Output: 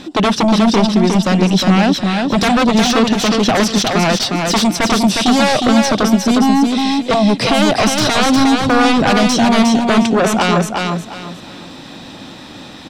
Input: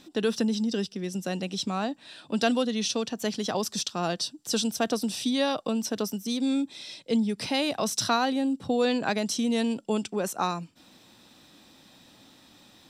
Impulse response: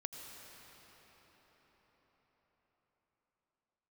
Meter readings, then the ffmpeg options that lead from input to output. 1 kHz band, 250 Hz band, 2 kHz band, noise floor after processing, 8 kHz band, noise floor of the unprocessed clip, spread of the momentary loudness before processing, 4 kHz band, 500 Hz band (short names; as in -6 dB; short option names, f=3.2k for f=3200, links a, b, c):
+17.0 dB, +15.5 dB, +17.5 dB, -34 dBFS, +12.0 dB, -57 dBFS, 7 LU, +14.5 dB, +13.0 dB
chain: -af "aeval=exprs='0.355*sin(PI/2*7.08*val(0)/0.355)':c=same,aemphasis=mode=reproduction:type=50fm,aecho=1:1:359|718|1077|1436:0.631|0.177|0.0495|0.0139"